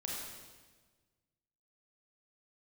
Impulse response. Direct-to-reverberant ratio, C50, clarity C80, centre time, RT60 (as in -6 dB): -4.0 dB, -1.0 dB, 1.5 dB, 89 ms, 1.4 s